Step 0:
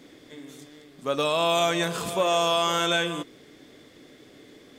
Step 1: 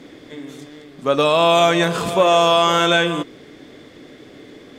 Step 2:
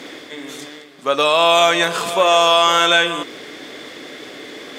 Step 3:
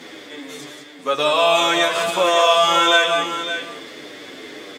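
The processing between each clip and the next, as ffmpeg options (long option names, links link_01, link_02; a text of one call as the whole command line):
ffmpeg -i in.wav -af "aemphasis=mode=reproduction:type=cd,volume=9dB" out.wav
ffmpeg -i in.wav -af "highpass=frequency=890:poles=1,areverse,acompressor=mode=upward:threshold=-29dB:ratio=2.5,areverse,volume=4.5dB" out.wav
ffmpeg -i in.wav -filter_complex "[0:a]asplit=2[link_01][link_02];[link_02]aecho=0:1:180|559:0.501|0.335[link_03];[link_01][link_03]amix=inputs=2:normalize=0,asplit=2[link_04][link_05];[link_05]adelay=9.1,afreqshift=-1.8[link_06];[link_04][link_06]amix=inputs=2:normalize=1" out.wav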